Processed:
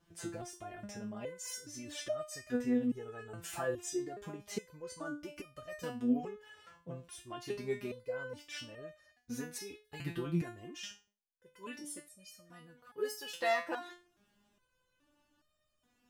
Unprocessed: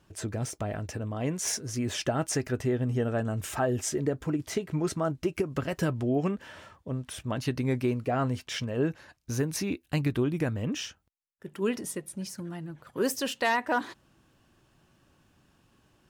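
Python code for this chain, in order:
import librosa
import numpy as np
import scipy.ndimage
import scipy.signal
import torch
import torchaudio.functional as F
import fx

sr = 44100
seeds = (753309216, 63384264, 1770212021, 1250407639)

y = fx.resonator_held(x, sr, hz=2.4, low_hz=170.0, high_hz=610.0)
y = F.gain(torch.from_numpy(y), 5.5).numpy()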